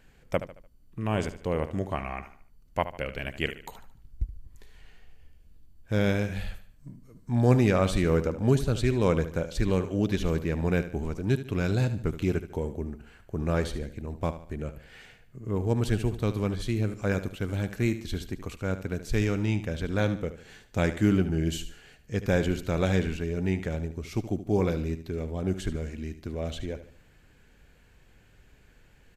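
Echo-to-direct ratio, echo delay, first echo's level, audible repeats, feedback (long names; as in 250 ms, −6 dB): −12.0 dB, 74 ms, −12.5 dB, 3, 39%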